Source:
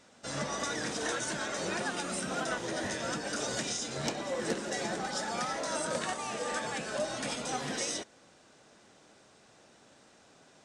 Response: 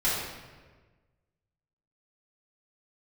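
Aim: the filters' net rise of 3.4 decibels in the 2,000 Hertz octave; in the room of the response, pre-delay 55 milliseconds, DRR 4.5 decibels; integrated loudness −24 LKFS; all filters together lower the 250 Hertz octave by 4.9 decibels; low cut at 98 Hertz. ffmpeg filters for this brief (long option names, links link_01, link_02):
-filter_complex "[0:a]highpass=98,equalizer=frequency=250:width_type=o:gain=-6.5,equalizer=frequency=2000:width_type=o:gain=4.5,asplit=2[link_01][link_02];[1:a]atrim=start_sample=2205,adelay=55[link_03];[link_02][link_03]afir=irnorm=-1:irlink=0,volume=-16dB[link_04];[link_01][link_04]amix=inputs=2:normalize=0,volume=8.5dB"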